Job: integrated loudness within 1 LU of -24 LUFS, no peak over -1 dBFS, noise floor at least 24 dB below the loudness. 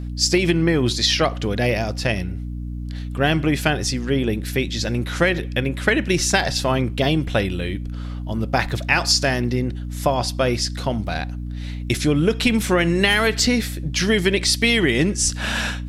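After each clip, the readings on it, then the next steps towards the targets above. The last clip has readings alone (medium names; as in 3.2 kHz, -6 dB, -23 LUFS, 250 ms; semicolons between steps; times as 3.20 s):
hum 60 Hz; highest harmonic 300 Hz; hum level -26 dBFS; loudness -20.0 LUFS; peak level -2.0 dBFS; loudness target -24.0 LUFS
-> hum notches 60/120/180/240/300 Hz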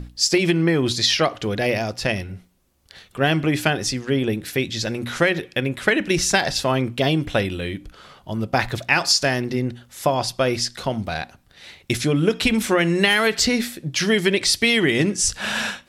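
hum not found; loudness -20.5 LUFS; peak level -2.5 dBFS; loudness target -24.0 LUFS
-> trim -3.5 dB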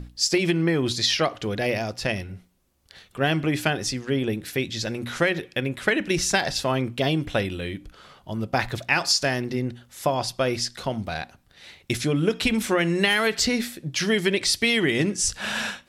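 loudness -24.0 LUFS; peak level -6.0 dBFS; noise floor -59 dBFS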